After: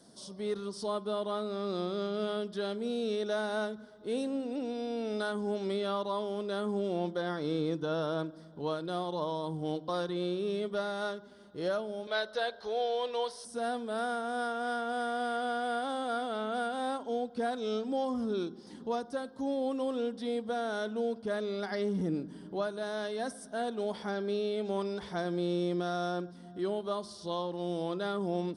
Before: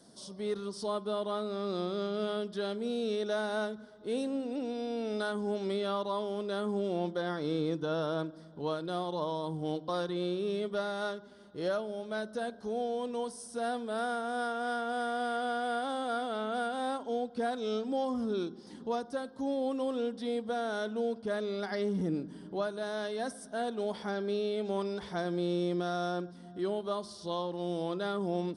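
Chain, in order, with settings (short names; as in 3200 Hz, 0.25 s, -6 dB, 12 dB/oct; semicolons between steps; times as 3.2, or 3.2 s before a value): 12.07–13.45 graphic EQ 125/250/500/1000/2000/4000/8000 Hz -11/-12/+5/+3/+6/+12/-8 dB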